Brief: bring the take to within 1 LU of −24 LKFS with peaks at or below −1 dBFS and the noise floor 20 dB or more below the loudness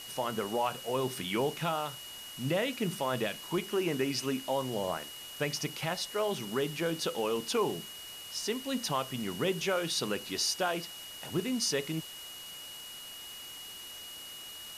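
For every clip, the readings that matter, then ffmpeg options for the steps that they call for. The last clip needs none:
interfering tone 2,900 Hz; level of the tone −45 dBFS; background noise floor −46 dBFS; target noise floor −54 dBFS; integrated loudness −33.5 LKFS; sample peak −19.0 dBFS; target loudness −24.0 LKFS
→ -af "bandreject=frequency=2900:width=30"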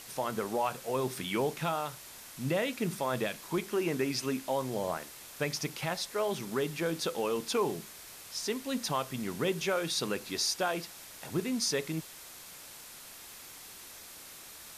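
interfering tone none found; background noise floor −49 dBFS; target noise floor −53 dBFS
→ -af "afftdn=noise_reduction=6:noise_floor=-49"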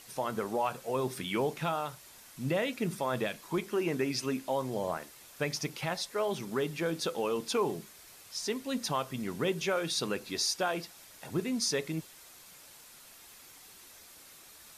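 background noise floor −54 dBFS; integrated loudness −33.5 LKFS; sample peak −19.5 dBFS; target loudness −24.0 LKFS
→ -af "volume=9.5dB"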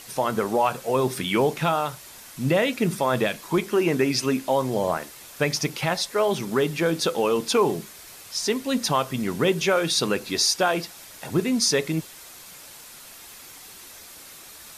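integrated loudness −24.0 LKFS; sample peak −10.0 dBFS; background noise floor −45 dBFS

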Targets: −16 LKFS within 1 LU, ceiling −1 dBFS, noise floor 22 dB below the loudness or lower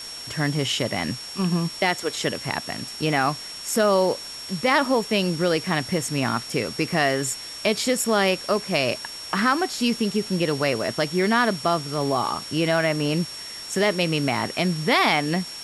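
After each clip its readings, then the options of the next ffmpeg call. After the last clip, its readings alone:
interfering tone 5,500 Hz; level of the tone −35 dBFS; background noise floor −37 dBFS; target noise floor −46 dBFS; integrated loudness −23.5 LKFS; sample peak −6.5 dBFS; target loudness −16.0 LKFS
→ -af "bandreject=frequency=5500:width=30"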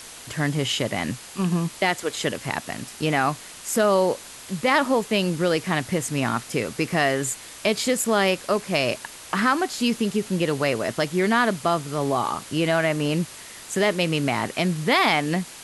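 interfering tone none found; background noise floor −42 dBFS; target noise floor −46 dBFS
→ -af "afftdn=noise_reduction=6:noise_floor=-42"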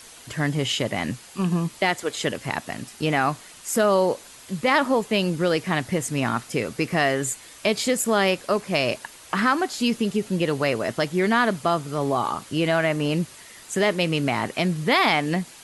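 background noise floor −46 dBFS; integrated loudness −23.5 LKFS; sample peak −6.5 dBFS; target loudness −16.0 LKFS
→ -af "volume=7.5dB,alimiter=limit=-1dB:level=0:latency=1"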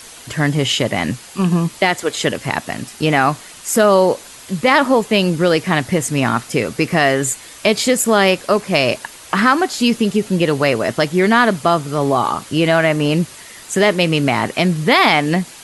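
integrated loudness −16.0 LKFS; sample peak −1.0 dBFS; background noise floor −38 dBFS

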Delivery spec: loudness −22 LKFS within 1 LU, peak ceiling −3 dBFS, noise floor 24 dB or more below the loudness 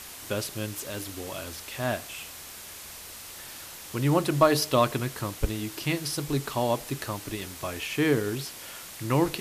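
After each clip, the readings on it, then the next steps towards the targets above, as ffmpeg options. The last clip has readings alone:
background noise floor −43 dBFS; target noise floor −53 dBFS; integrated loudness −28.5 LKFS; sample peak −7.5 dBFS; target loudness −22.0 LKFS
→ -af "afftdn=noise_reduction=10:noise_floor=-43"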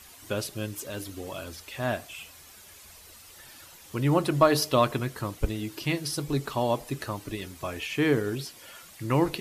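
background noise floor −51 dBFS; target noise floor −53 dBFS
→ -af "afftdn=noise_reduction=6:noise_floor=-51"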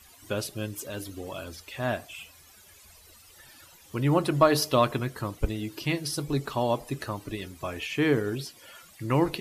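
background noise floor −54 dBFS; integrated loudness −29.0 LKFS; sample peak −7.5 dBFS; target loudness −22.0 LKFS
→ -af "volume=7dB,alimiter=limit=-3dB:level=0:latency=1"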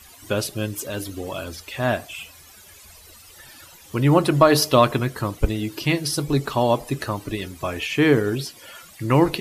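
integrated loudness −22.0 LKFS; sample peak −3.0 dBFS; background noise floor −47 dBFS

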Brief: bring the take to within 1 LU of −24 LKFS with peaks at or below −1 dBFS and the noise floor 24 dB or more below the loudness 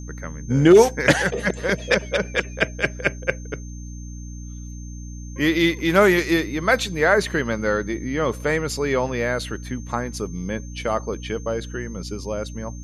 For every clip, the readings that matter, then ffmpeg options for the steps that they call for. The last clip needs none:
mains hum 60 Hz; hum harmonics up to 300 Hz; level of the hum −32 dBFS; interfering tone 6,300 Hz; level of the tone −45 dBFS; integrated loudness −21.5 LKFS; sample peak −3.0 dBFS; target loudness −24.0 LKFS
→ -af "bandreject=frequency=60:width_type=h:width=6,bandreject=frequency=120:width_type=h:width=6,bandreject=frequency=180:width_type=h:width=6,bandreject=frequency=240:width_type=h:width=6,bandreject=frequency=300:width_type=h:width=6"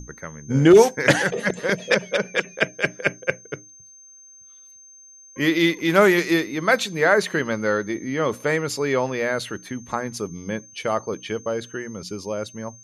mains hum none found; interfering tone 6,300 Hz; level of the tone −45 dBFS
→ -af "bandreject=frequency=6300:width=30"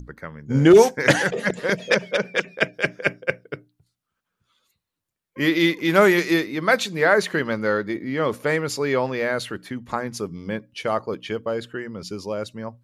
interfering tone none found; integrated loudness −21.5 LKFS; sample peak −3.0 dBFS; target loudness −24.0 LKFS
→ -af "volume=-2.5dB"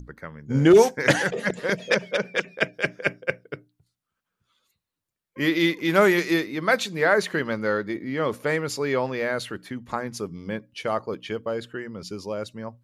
integrated loudness −24.0 LKFS; sample peak −5.5 dBFS; background noise floor −86 dBFS

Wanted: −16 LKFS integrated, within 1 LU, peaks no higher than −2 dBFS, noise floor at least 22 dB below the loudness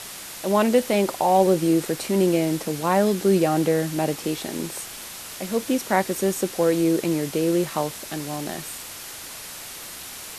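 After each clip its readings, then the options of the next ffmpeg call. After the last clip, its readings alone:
background noise floor −38 dBFS; target noise floor −45 dBFS; integrated loudness −23.0 LKFS; sample peak −5.5 dBFS; target loudness −16.0 LKFS
→ -af "afftdn=noise_reduction=7:noise_floor=-38"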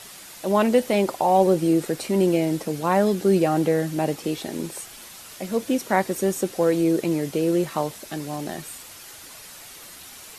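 background noise floor −43 dBFS; target noise floor −45 dBFS
→ -af "afftdn=noise_reduction=6:noise_floor=-43"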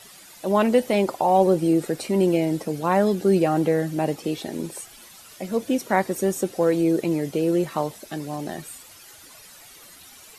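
background noise floor −47 dBFS; integrated loudness −22.5 LKFS; sample peak −5.5 dBFS; target loudness −16.0 LKFS
→ -af "volume=6.5dB,alimiter=limit=-2dB:level=0:latency=1"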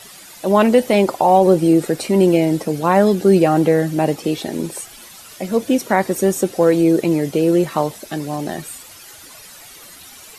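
integrated loudness −16.5 LKFS; sample peak −2.0 dBFS; background noise floor −41 dBFS

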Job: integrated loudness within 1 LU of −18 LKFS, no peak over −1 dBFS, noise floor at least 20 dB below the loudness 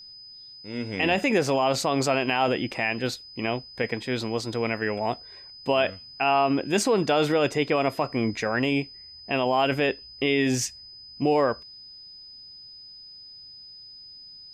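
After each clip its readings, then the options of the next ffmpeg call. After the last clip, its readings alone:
interfering tone 5,000 Hz; level of the tone −43 dBFS; integrated loudness −25.5 LKFS; sample peak −10.0 dBFS; target loudness −18.0 LKFS
→ -af "bandreject=frequency=5000:width=30"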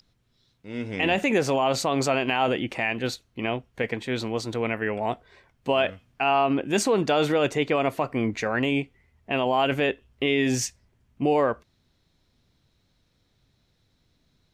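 interfering tone none found; integrated loudness −25.5 LKFS; sample peak −10.0 dBFS; target loudness −18.0 LKFS
→ -af "volume=7.5dB"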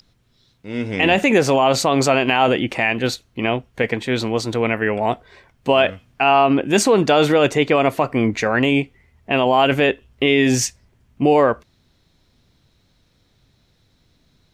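integrated loudness −18.0 LKFS; sample peak −2.5 dBFS; background noise floor −62 dBFS

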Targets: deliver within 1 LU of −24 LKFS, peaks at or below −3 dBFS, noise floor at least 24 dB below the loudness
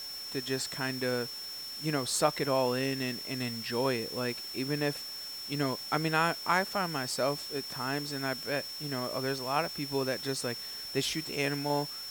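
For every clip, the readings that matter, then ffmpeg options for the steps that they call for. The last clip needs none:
interfering tone 5,400 Hz; level of the tone −39 dBFS; background noise floor −41 dBFS; target noise floor −56 dBFS; integrated loudness −32.0 LKFS; sample peak −12.5 dBFS; target loudness −24.0 LKFS
→ -af "bandreject=frequency=5400:width=30"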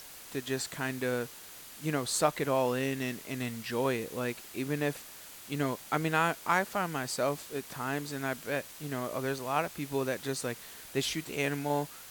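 interfering tone none found; background noise floor −49 dBFS; target noise floor −57 dBFS
→ -af "afftdn=noise_reduction=8:noise_floor=-49"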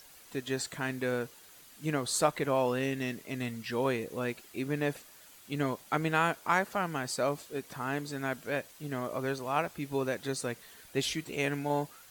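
background noise floor −55 dBFS; target noise floor −57 dBFS
→ -af "afftdn=noise_reduction=6:noise_floor=-55"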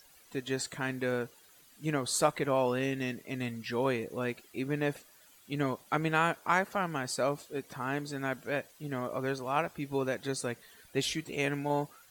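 background noise floor −60 dBFS; integrated loudness −33.0 LKFS; sample peak −12.5 dBFS; target loudness −24.0 LKFS
→ -af "volume=9dB"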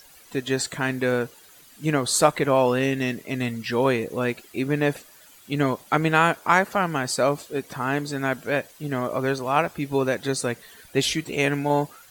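integrated loudness −24.0 LKFS; sample peak −3.5 dBFS; background noise floor −51 dBFS

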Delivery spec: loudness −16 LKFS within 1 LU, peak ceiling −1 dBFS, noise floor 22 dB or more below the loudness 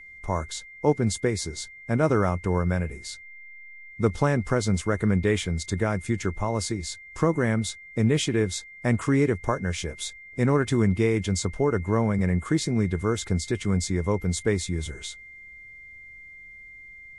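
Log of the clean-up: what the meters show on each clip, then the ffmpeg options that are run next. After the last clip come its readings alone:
interfering tone 2,100 Hz; level of the tone −43 dBFS; integrated loudness −26.0 LKFS; sample peak −7.5 dBFS; target loudness −16.0 LKFS
→ -af "bandreject=frequency=2100:width=30"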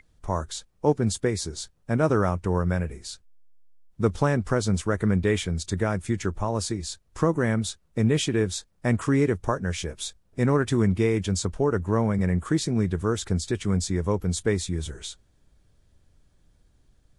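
interfering tone none found; integrated loudness −26.0 LKFS; sample peak −8.0 dBFS; target loudness −16.0 LKFS
→ -af "volume=10dB,alimiter=limit=-1dB:level=0:latency=1"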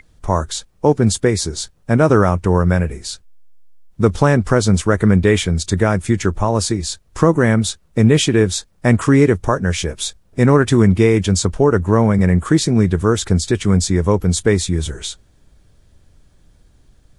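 integrated loudness −16.0 LKFS; sample peak −1.0 dBFS; background noise floor −54 dBFS

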